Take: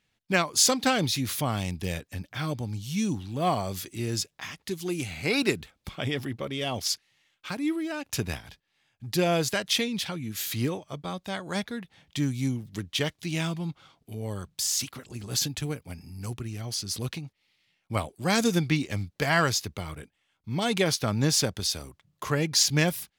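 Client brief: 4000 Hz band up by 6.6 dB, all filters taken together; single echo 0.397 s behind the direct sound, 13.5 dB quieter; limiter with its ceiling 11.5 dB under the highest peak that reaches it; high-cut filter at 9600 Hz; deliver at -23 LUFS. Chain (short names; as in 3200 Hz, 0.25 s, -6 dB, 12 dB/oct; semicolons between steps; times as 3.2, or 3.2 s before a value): LPF 9600 Hz; bell 4000 Hz +8.5 dB; limiter -16.5 dBFS; echo 0.397 s -13.5 dB; gain +6 dB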